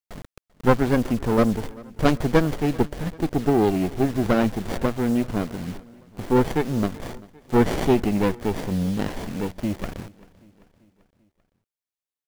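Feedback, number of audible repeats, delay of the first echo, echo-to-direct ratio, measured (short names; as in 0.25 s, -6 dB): 56%, 3, 0.39 s, -21.0 dB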